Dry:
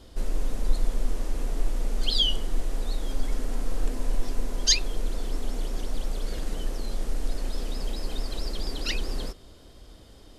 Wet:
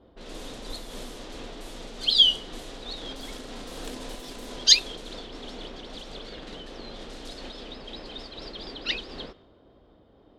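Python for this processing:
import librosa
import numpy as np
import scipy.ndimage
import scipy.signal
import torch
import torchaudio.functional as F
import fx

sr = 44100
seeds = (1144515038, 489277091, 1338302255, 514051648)

y = fx.law_mismatch(x, sr, coded='mu', at=(2.76, 5.2))
y = fx.env_lowpass(y, sr, base_hz=900.0, full_db=-16.5)
y = fx.highpass(y, sr, hz=210.0, slope=6)
y = fx.peak_eq(y, sr, hz=3600.0, db=9.5, octaves=0.74)
y = fx.am_noise(y, sr, seeds[0], hz=5.7, depth_pct=50)
y = y * librosa.db_to_amplitude(1.5)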